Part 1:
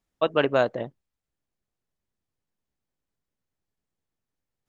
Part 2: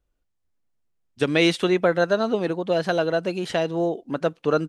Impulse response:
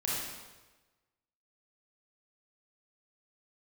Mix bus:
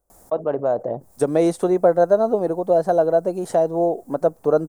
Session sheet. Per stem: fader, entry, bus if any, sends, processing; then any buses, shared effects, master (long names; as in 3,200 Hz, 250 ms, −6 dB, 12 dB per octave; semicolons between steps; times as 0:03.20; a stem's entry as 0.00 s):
−5.0 dB, 0.10 s, no send, envelope flattener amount 50%
+1.0 dB, 0.00 s, no send, low-shelf EQ 200 Hz −3.5 dB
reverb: not used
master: drawn EQ curve 290 Hz 0 dB, 710 Hz +7 dB, 2,900 Hz −24 dB, 8,900 Hz +2 dB; one half of a high-frequency compander encoder only